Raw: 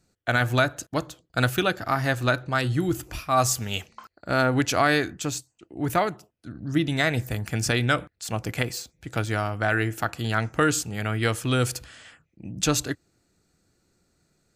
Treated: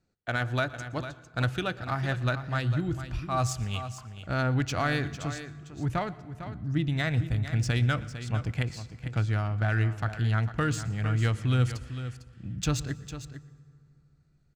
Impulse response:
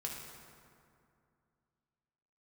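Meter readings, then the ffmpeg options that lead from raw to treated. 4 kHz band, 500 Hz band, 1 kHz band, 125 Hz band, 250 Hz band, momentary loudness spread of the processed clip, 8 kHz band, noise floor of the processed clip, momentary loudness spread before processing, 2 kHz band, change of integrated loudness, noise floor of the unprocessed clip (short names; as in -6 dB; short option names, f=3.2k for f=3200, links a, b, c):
-8.0 dB, -8.5 dB, -7.5 dB, +1.5 dB, -5.5 dB, 12 LU, -11.0 dB, -62 dBFS, 11 LU, -7.0 dB, -4.5 dB, -72 dBFS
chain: -filter_complex "[0:a]adynamicsmooth=sensitivity=2:basefreq=5k,aecho=1:1:452:0.266,asubboost=boost=4:cutoff=170,asplit=2[a][b];[1:a]atrim=start_sample=2205,adelay=118[c];[b][c]afir=irnorm=-1:irlink=0,volume=-18.5dB[d];[a][d]amix=inputs=2:normalize=0,volume=-7dB"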